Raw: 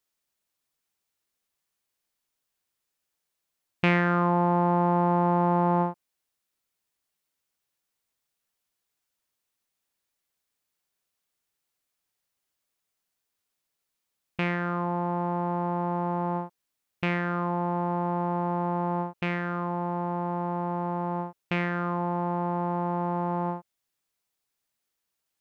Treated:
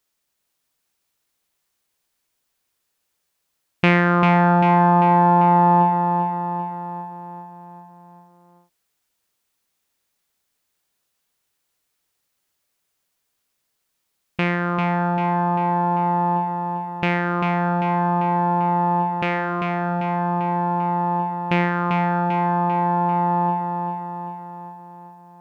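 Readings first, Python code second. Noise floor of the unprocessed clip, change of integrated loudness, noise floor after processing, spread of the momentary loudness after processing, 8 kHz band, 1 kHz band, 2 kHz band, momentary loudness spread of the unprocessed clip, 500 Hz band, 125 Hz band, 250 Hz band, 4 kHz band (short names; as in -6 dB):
-83 dBFS, +7.5 dB, -75 dBFS, 15 LU, n/a, +10.5 dB, +8.0 dB, 8 LU, +5.5 dB, +7.0 dB, +6.5 dB, +8.0 dB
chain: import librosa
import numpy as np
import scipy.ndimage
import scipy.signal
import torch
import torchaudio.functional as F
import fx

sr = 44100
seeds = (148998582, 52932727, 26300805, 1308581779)

y = fx.echo_feedback(x, sr, ms=394, feedback_pct=55, wet_db=-5.5)
y = y * librosa.db_to_amplitude(6.5)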